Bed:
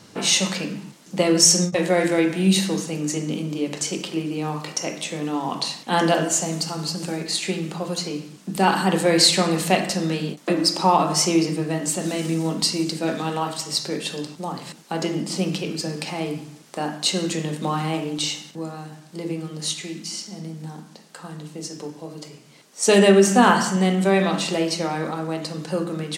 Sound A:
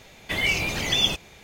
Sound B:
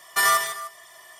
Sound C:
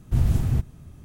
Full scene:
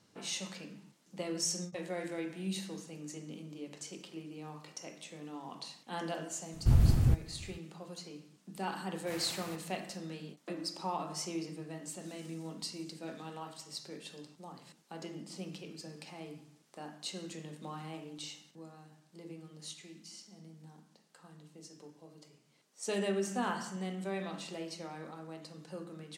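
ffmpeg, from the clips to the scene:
ffmpeg -i bed.wav -i cue0.wav -i cue1.wav -i cue2.wav -filter_complex "[3:a]asplit=2[link_01][link_02];[0:a]volume=-19.5dB[link_03];[link_02]highpass=880[link_04];[link_01]atrim=end=1.04,asetpts=PTS-STARTPTS,volume=-3.5dB,afade=type=in:duration=0.004:curve=hsin,afade=type=out:start_time=1.036:duration=0.004:curve=hsin,adelay=6540[link_05];[link_04]atrim=end=1.04,asetpts=PTS-STARTPTS,volume=-2.5dB,afade=type=in:duration=0.004:curve=hsin,afade=type=out:start_time=1.036:duration=0.004:curve=hsin,adelay=8950[link_06];[link_03][link_05][link_06]amix=inputs=3:normalize=0" out.wav

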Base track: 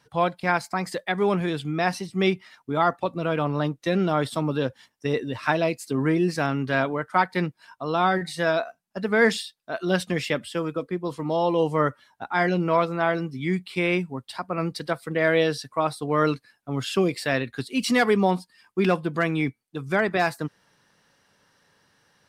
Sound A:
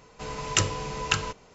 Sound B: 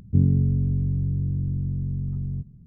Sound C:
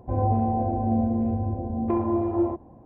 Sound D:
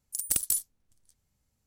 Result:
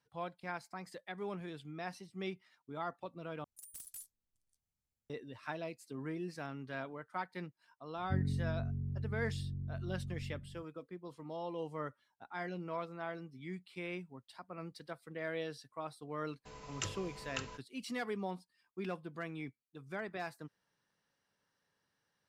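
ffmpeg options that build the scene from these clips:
ffmpeg -i bed.wav -i cue0.wav -i cue1.wav -i cue2.wav -i cue3.wav -filter_complex "[0:a]volume=-19dB[link_01];[4:a]asoftclip=type=tanh:threshold=-26dB[link_02];[2:a]aecho=1:1:315:0.355[link_03];[1:a]agate=range=-25dB:threshold=-43dB:ratio=16:release=100:detection=peak[link_04];[link_01]asplit=2[link_05][link_06];[link_05]atrim=end=3.444[link_07];[link_02]atrim=end=1.66,asetpts=PTS-STARTPTS,volume=-17dB[link_08];[link_06]atrim=start=5.096[link_09];[link_03]atrim=end=2.66,asetpts=PTS-STARTPTS,volume=-15.5dB,afade=type=in:duration=0.004:curve=hsin,afade=type=out:start_time=2.656:duration=0.004:curve=hsin,adelay=7970[link_10];[link_04]atrim=end=1.54,asetpts=PTS-STARTPTS,volume=-16.5dB,afade=type=in:duration=0.004:curve=hsin,afade=type=out:start_time=1.536:duration=0.004:curve=hsin,adelay=16250[link_11];[link_07][link_08]acrossfade=duration=0.004:curve1=hsin:curve2=hsin[link_12];[link_12][link_09]acrossfade=duration=0.004:curve1=hsin:curve2=hsin[link_13];[link_13][link_10][link_11]amix=inputs=3:normalize=0" out.wav

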